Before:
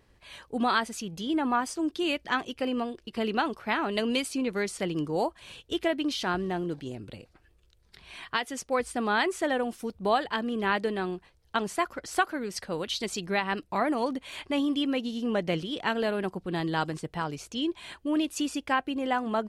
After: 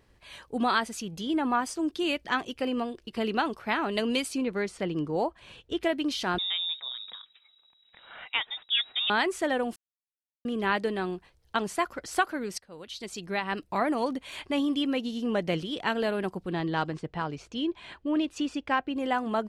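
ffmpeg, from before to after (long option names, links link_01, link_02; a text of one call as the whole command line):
ffmpeg -i in.wav -filter_complex "[0:a]asettb=1/sr,asplit=3[link_01][link_02][link_03];[link_01]atrim=end=4.444[link_04];[link_02]atrim=start=4.44:end=5.83,asetpts=PTS-STARTPTS,afade=type=in:duration=0.004:curve=qsin,afade=type=out:start_time=1.386:duration=0.004:curve=qsin,lowpass=frequency=2700:poles=1[link_05];[link_03]atrim=start=5.826[link_06];[link_04][link_05]acrossfade=duration=0.004:curve1=hsin:curve2=qsin[link_07];[link_07][link_06]acrossfade=duration=0.004:curve1=qsin:curve2=hsin,asettb=1/sr,asplit=3[link_08][link_09][link_10];[link_08]atrim=end=6.384[link_11];[link_09]atrim=start=6.38:end=9.1,asetpts=PTS-STARTPTS,afade=type=in:duration=0.004:curve=qsin,afade=type=out:start_time=2.716:duration=0.004:curve=qsin,lowpass=frequency=3300:width_type=q:width=0.5098,lowpass=frequency=3300:width_type=q:width=0.6013,lowpass=frequency=3300:width_type=q:width=0.9,lowpass=frequency=3300:width_type=q:width=2.563,afreqshift=-3900[link_12];[link_10]atrim=start=9.096[link_13];[link_11][link_12]acrossfade=duration=0.004:curve1=hsin:curve2=qsin[link_14];[link_14][link_13]acrossfade=duration=0.004:curve1=qsin:curve2=hsin,asettb=1/sr,asplit=3[link_15][link_16][link_17];[link_15]atrim=end=16.534[link_18];[link_16]atrim=start=16.53:end=18.95,asetpts=PTS-STARTPTS,afade=type=in:duration=0.004:curve=qsin,afade=type=out:start_time=2.416:duration=0.004:curve=qsin,adynamicsmooth=sensitivity=1:basefreq=4700[link_19];[link_17]atrim=start=18.946[link_20];[link_18][link_19]acrossfade=duration=0.004:curve1=hsin:curve2=qsin[link_21];[link_21][link_20]acrossfade=duration=0.004:curve1=qsin:curve2=hsin,asplit=4[link_22][link_23][link_24][link_25];[link_22]atrim=end=9.76,asetpts=PTS-STARTPTS,afade=type=out:start_time=9.756:duration=0.004:curve=hsin[link_26];[link_23]atrim=start=9.76:end=10.45,asetpts=PTS-STARTPTS,volume=0[link_27];[link_24]atrim=start=10.45:end=12.58,asetpts=PTS-STARTPTS,afade=type=in:duration=0.004:curve=hsin,afade=type=out:start_time=2.126:duration=0.004:curve=hsin:silence=0.0794328[link_28];[link_25]atrim=start=12.58,asetpts=PTS-STARTPTS,afade=type=in:duration=1.12:silence=0.0794328[link_29];[link_26][link_27][link_28][link_29]concat=n=4:v=0:a=1" out.wav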